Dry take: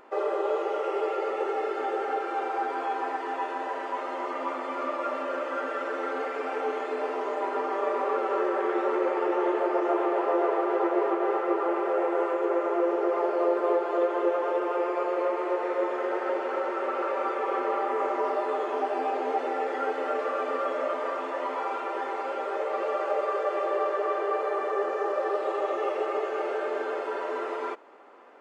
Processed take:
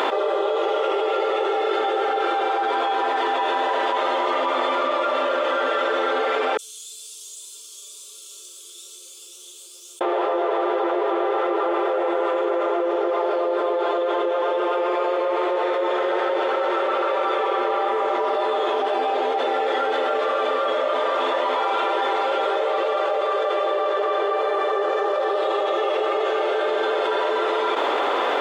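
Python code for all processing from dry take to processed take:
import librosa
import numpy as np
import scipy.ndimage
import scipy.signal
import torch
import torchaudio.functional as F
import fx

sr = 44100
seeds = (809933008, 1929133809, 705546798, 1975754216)

y = fx.chain(x, sr, fx.cheby2_highpass(hz=2000.0, order=4, stop_db=70),
    fx.tilt_eq(slope=-2.0), at=(6.57, 10.01))
y = scipy.signal.sosfilt(scipy.signal.cheby1(2, 1.0, 410.0, 'highpass', fs=sr, output='sos'), y)
y = fx.peak_eq(y, sr, hz=3500.0, db=15.0, octaves=0.38)
y = fx.env_flatten(y, sr, amount_pct=100)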